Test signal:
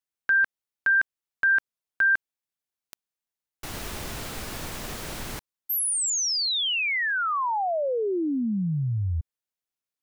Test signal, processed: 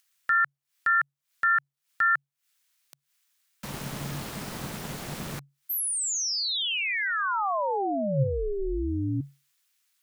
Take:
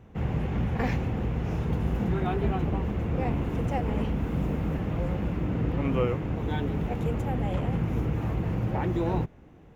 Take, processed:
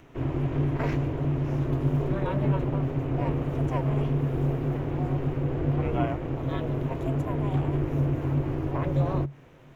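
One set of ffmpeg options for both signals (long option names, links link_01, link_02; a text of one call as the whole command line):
ffmpeg -i in.wav -filter_complex "[0:a]aeval=exprs='val(0)*sin(2*PI*200*n/s)':channel_layout=same,acrossover=split=1200[link_01][link_02];[link_01]crystalizer=i=7.5:c=0[link_03];[link_02]acompressor=mode=upward:threshold=-51dB:ratio=2.5:attack=3.6:release=158:knee=2.83:detection=peak[link_04];[link_03][link_04]amix=inputs=2:normalize=0,equalizer=frequency=140:width=7.7:gain=14" out.wav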